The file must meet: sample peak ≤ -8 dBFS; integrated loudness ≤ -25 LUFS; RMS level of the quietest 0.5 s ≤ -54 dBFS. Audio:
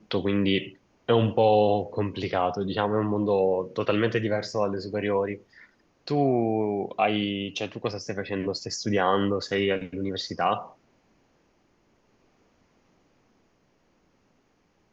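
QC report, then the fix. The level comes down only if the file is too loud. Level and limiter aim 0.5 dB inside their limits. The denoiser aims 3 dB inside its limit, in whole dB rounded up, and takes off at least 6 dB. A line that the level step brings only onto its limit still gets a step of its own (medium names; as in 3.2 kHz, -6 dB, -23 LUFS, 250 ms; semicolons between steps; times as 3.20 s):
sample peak -8.5 dBFS: pass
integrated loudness -26.0 LUFS: pass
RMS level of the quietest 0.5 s -67 dBFS: pass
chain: none needed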